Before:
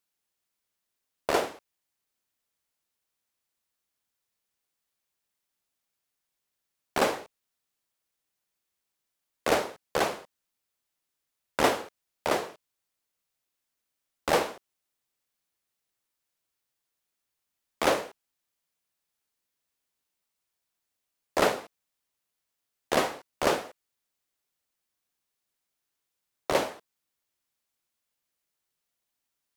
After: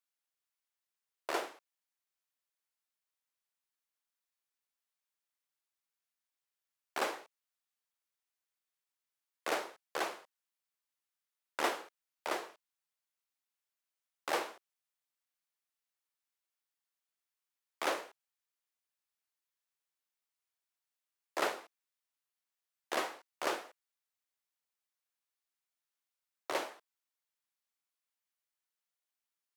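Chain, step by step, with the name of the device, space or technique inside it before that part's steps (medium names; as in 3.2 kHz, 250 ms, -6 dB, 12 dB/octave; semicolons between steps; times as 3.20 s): filter by subtraction (in parallel: low-pass 1.2 kHz 12 dB/octave + polarity flip); on the sum: dynamic bell 340 Hz, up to +8 dB, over -50 dBFS, Q 3.3; trim -9 dB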